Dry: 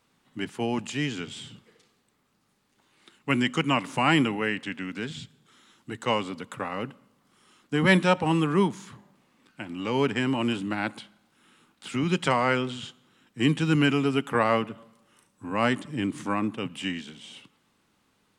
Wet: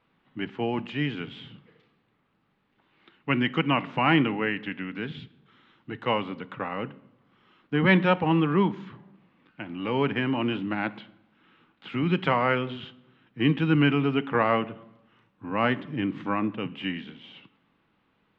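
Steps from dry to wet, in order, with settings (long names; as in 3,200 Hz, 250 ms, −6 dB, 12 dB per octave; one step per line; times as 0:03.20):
low-pass filter 3,200 Hz 24 dB per octave
convolution reverb, pre-delay 6 ms, DRR 15 dB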